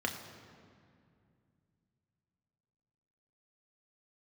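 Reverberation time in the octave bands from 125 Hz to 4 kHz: 3.8 s, 3.3 s, 2.5 s, 2.2 s, 2.0 s, 1.5 s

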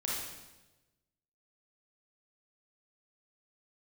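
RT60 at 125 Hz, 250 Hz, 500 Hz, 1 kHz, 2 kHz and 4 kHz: 1.4 s, 1.2 s, 1.2 s, 1.0 s, 1.0 s, 1.0 s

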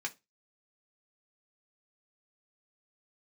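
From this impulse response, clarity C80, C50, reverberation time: 30.5 dB, 21.5 dB, 0.20 s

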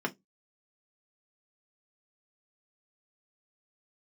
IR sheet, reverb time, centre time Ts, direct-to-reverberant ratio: 0.15 s, 5 ms, 0.5 dB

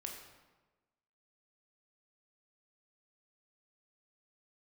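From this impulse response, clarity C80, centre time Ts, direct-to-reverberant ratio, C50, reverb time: 6.0 dB, 42 ms, 1.0 dB, 4.0 dB, 1.2 s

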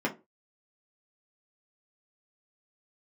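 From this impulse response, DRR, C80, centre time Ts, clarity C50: -3.0 dB, 22.5 dB, 12 ms, 15.0 dB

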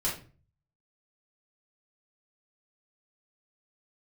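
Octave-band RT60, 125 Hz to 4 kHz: 0.75 s, 0.50 s, 0.40 s, 0.35 s, 0.35 s, 0.30 s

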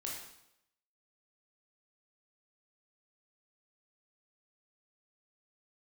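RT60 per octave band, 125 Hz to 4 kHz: 0.80 s, 0.80 s, 0.80 s, 0.80 s, 0.75 s, 0.75 s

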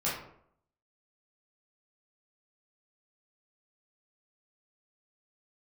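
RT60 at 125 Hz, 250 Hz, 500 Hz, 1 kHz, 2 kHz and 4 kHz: 0.70 s, 0.70 s, 0.70 s, 0.65 s, 0.50 s, 0.35 s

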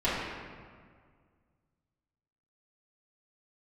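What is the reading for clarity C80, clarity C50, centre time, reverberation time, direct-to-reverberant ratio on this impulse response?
1.0 dB, -1.0 dB, 107 ms, 1.9 s, -12.0 dB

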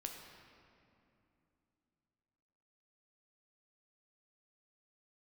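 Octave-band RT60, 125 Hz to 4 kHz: 3.7 s, 3.7 s, 2.9 s, 2.6 s, 2.3 s, 1.7 s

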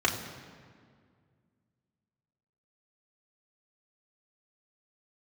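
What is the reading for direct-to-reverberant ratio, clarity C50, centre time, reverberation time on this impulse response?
-2.0 dB, 8.0 dB, 34 ms, 2.0 s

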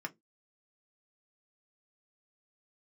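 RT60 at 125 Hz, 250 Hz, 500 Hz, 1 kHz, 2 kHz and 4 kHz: 0.25 s, 0.25 s, 0.20 s, 0.10 s, 0.10 s, 0.10 s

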